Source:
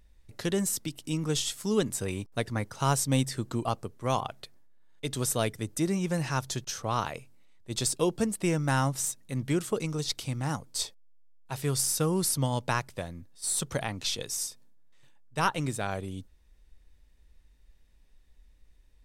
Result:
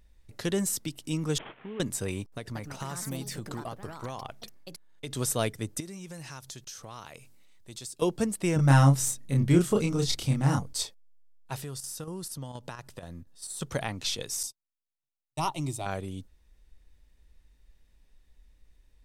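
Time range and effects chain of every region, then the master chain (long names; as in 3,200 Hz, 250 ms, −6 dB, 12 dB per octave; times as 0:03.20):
0:01.38–0:01.80: variable-slope delta modulation 16 kbit/s + low-shelf EQ 140 Hz −11 dB + downward compressor 4 to 1, threshold −38 dBFS
0:02.34–0:05.15: downward compressor 10 to 1, threshold −32 dBFS + delay with pitch and tempo change per echo 191 ms, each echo +4 semitones, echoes 2, each echo −6 dB
0:05.80–0:08.02: high-shelf EQ 2,900 Hz +8.5 dB + downward compressor 3 to 1, threshold −44 dBFS
0:08.56–0:10.73: low-shelf EQ 330 Hz +7.5 dB + double-tracking delay 29 ms −2.5 dB
0:11.60–0:13.61: notch filter 2,200 Hz, Q 7.3 + square-wave tremolo 4.2 Hz, depth 60%, duty 85% + downward compressor 5 to 1, threshold −36 dBFS
0:14.43–0:15.86: noise gate −41 dBFS, range −37 dB + phaser with its sweep stopped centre 320 Hz, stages 8
whole clip: no processing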